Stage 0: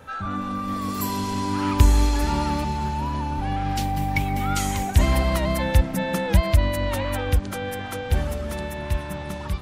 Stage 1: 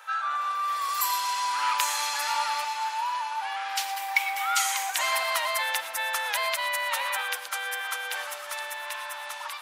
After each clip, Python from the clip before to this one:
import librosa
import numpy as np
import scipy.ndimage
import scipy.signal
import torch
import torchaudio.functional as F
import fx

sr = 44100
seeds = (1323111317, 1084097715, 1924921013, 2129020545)

y = scipy.signal.sosfilt(scipy.signal.butter(4, 910.0, 'highpass', fs=sr, output='sos'), x)
y = fx.rev_gated(y, sr, seeds[0], gate_ms=140, shape='rising', drr_db=10.0)
y = F.gain(torch.from_numpy(y), 3.5).numpy()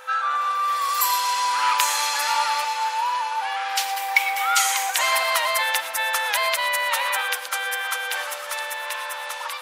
y = x + 10.0 ** (-53.0 / 20.0) * np.sin(2.0 * np.pi * 510.0 * np.arange(len(x)) / sr)
y = F.gain(torch.from_numpy(y), 5.5).numpy()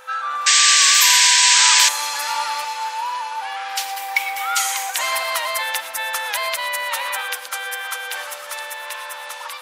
y = fx.bass_treble(x, sr, bass_db=7, treble_db=2)
y = fx.spec_paint(y, sr, seeds[1], shape='noise', start_s=0.46, length_s=1.43, low_hz=1500.0, high_hz=8400.0, level_db=-12.0)
y = F.gain(torch.from_numpy(y), -1.5).numpy()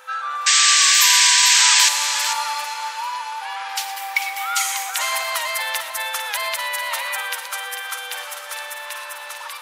y = fx.highpass(x, sr, hz=510.0, slope=6)
y = y + 10.0 ** (-9.0 / 20.0) * np.pad(y, (int(446 * sr / 1000.0), 0))[:len(y)]
y = F.gain(torch.from_numpy(y), -1.0).numpy()